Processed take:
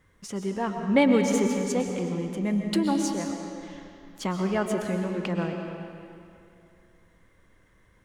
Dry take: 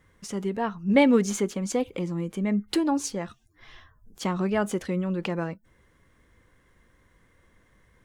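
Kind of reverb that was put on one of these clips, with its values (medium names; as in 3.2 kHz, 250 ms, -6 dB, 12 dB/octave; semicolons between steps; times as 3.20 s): algorithmic reverb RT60 2.6 s, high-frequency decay 0.8×, pre-delay 85 ms, DRR 3.5 dB; trim -1.5 dB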